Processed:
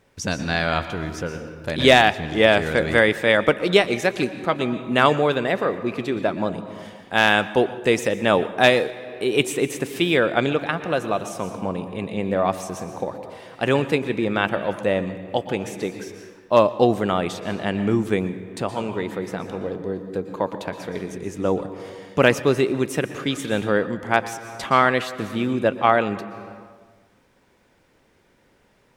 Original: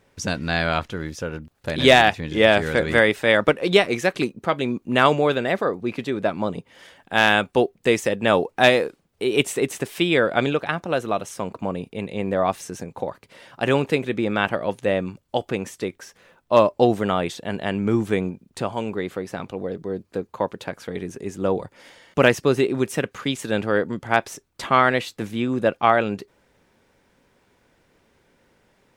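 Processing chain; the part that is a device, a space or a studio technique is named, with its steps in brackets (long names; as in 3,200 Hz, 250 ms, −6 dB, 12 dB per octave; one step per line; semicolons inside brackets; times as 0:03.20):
compressed reverb return (on a send at −5 dB: convolution reverb RT60 1.3 s, pre-delay 113 ms + downward compressor 10 to 1, threshold −25 dBFS, peak gain reduction 15 dB)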